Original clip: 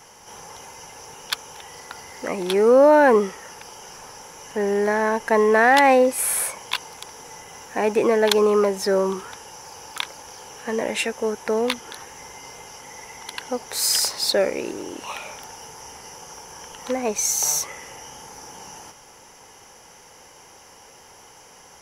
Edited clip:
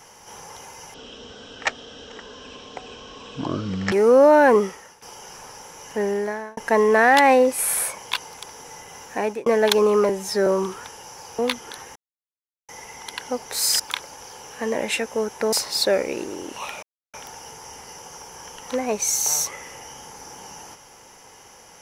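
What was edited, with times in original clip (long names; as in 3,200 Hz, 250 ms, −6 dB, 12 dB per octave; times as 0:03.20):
0:00.94–0:02.52: play speed 53%
0:03.25–0:03.62: fade out, to −16 dB
0:04.60–0:05.17: fade out
0:07.64–0:08.06: fade out equal-power
0:08.69–0:08.94: time-stretch 1.5×
0:09.86–0:11.59: move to 0:14.00
0:12.16–0:12.89: silence
0:15.30: splice in silence 0.31 s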